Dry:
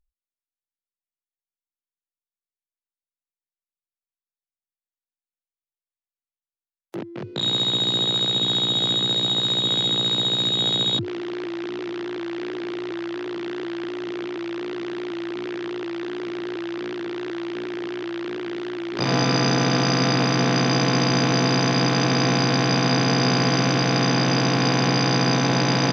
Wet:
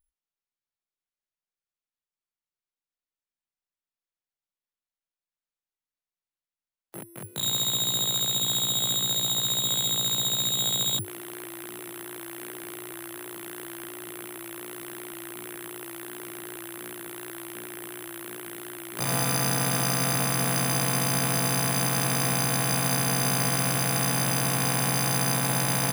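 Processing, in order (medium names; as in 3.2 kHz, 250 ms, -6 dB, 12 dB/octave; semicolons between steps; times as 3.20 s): peaking EQ 330 Hz -9 dB 1.2 oct; careless resampling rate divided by 4×, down none, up zero stuff; treble shelf 6.2 kHz -9.5 dB; trim -4.5 dB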